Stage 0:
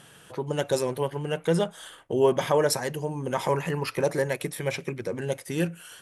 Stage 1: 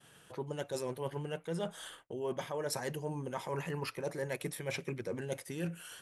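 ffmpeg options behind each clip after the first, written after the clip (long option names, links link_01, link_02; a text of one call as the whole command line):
ffmpeg -i in.wav -af "agate=range=-33dB:threshold=-47dB:ratio=3:detection=peak,areverse,acompressor=threshold=-30dB:ratio=10,areverse,volume=-3.5dB" out.wav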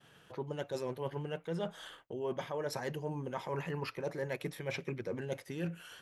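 ffmpeg -i in.wav -af "equalizer=frequency=9300:width=1.2:gain=-13" out.wav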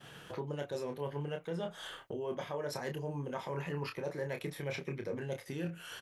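ffmpeg -i in.wav -filter_complex "[0:a]acompressor=threshold=-53dB:ratio=2,asplit=2[link_01][link_02];[link_02]adelay=28,volume=-6.5dB[link_03];[link_01][link_03]amix=inputs=2:normalize=0,volume=8.5dB" out.wav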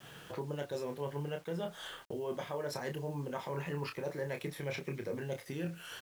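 ffmpeg -i in.wav -af "acrusher=bits=9:mix=0:aa=0.000001" out.wav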